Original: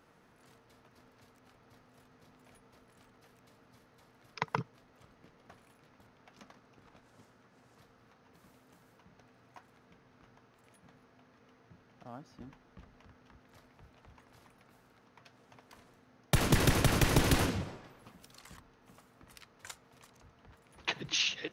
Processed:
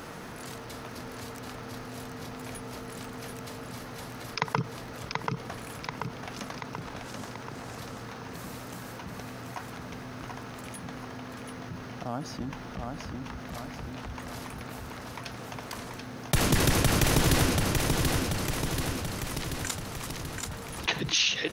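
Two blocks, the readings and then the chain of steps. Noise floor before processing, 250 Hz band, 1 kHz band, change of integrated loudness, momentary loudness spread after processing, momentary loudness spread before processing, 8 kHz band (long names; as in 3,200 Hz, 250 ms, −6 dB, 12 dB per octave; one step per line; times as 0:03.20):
−65 dBFS, +6.5 dB, +7.0 dB, −2.0 dB, 16 LU, 23 LU, +8.5 dB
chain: bass and treble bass +1 dB, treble +4 dB
repeating echo 734 ms, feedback 41%, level −6.5 dB
envelope flattener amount 50%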